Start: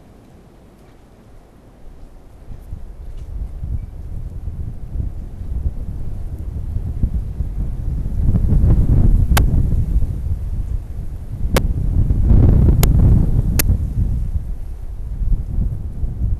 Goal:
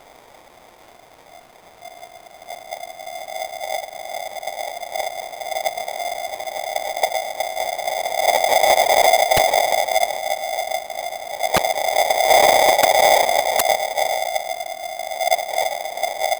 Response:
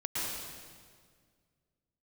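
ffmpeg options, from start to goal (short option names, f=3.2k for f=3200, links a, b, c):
-af "aeval=exprs='val(0)*sgn(sin(2*PI*700*n/s))':c=same,volume=-3.5dB"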